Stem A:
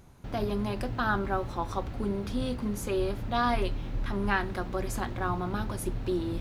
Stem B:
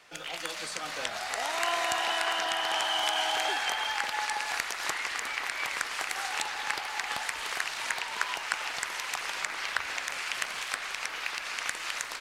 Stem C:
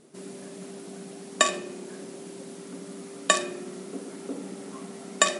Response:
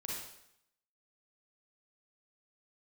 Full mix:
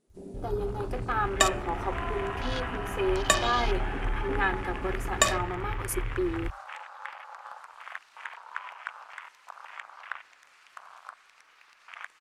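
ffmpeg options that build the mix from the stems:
-filter_complex "[0:a]highshelf=frequency=3800:gain=11,aecho=1:1:2.4:0.84,adelay=100,volume=-3.5dB,asplit=2[link_01][link_02];[link_02]volume=-23.5dB[link_03];[1:a]equalizer=frequency=1200:width=1.6:gain=6,adelay=350,volume=-10.5dB,asplit=2[link_04][link_05];[link_05]volume=-9.5dB[link_06];[2:a]volume=-2.5dB,asplit=2[link_07][link_08];[link_08]volume=-16dB[link_09];[3:a]atrim=start_sample=2205[link_10];[link_03][link_06][link_09]amix=inputs=3:normalize=0[link_11];[link_11][link_10]afir=irnorm=-1:irlink=0[link_12];[link_01][link_04][link_07][link_12]amix=inputs=4:normalize=0,afwtdn=0.0141"

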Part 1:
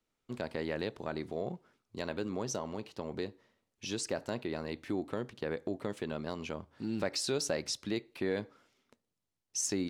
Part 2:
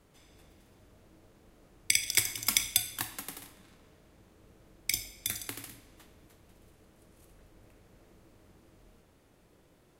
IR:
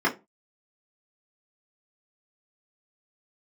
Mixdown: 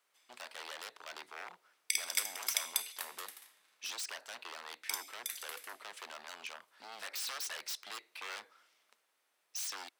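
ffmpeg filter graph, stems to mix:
-filter_complex "[0:a]aeval=exprs='0.0168*(abs(mod(val(0)/0.0168+3,4)-2)-1)':channel_layout=same,volume=2dB[link_01];[1:a]volume=-7dB[link_02];[link_01][link_02]amix=inputs=2:normalize=0,highpass=1100,bandreject=frequency=6900:width=18"

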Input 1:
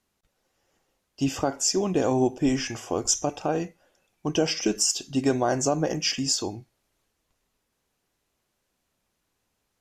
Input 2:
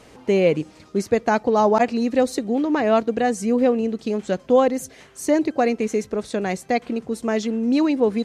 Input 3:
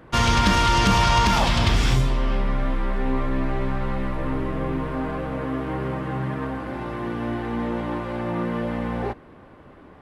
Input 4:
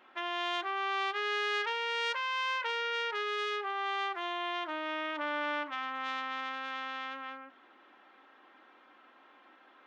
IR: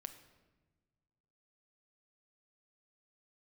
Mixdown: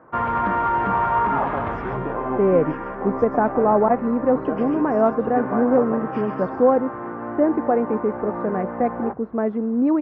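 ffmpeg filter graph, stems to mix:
-filter_complex "[0:a]tiltshelf=frequency=750:gain=-7.5,adelay=100,volume=-2dB,asplit=2[link_01][link_02];[link_02]volume=-6.5dB[link_03];[1:a]adelay=2100,volume=0dB[link_04];[2:a]highpass=frequency=580:poles=1,volume=3dB[link_05];[3:a]volume=0dB,asplit=3[link_06][link_07][link_08];[link_06]atrim=end=2.95,asetpts=PTS-STARTPTS,afade=type=out:start_time=2.946:duration=0.004:curve=hsin[link_09];[link_07]atrim=start=2.95:end=5.35,asetpts=PTS-STARTPTS,volume=0[link_10];[link_08]atrim=start=5.35,asetpts=PTS-STARTPTS,afade=type=in:duration=0.004:curve=hsin[link_11];[link_09][link_10][link_11]concat=n=3:v=0:a=1[link_12];[link_03]aecho=0:1:132:1[link_13];[link_01][link_04][link_05][link_12][link_13]amix=inputs=5:normalize=0,lowpass=frequency=1400:width=0.5412,lowpass=frequency=1400:width=1.3066"

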